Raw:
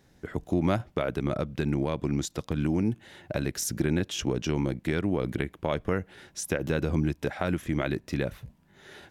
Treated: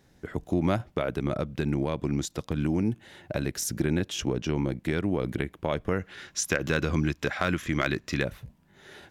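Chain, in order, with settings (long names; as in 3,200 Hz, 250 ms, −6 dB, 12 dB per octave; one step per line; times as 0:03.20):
0:04.29–0:04.72: high-shelf EQ 5,300 Hz −6.5 dB
0:06.00–0:08.24: gain on a spectral selection 1,000–7,600 Hz +7 dB
gain into a clipping stage and back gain 13 dB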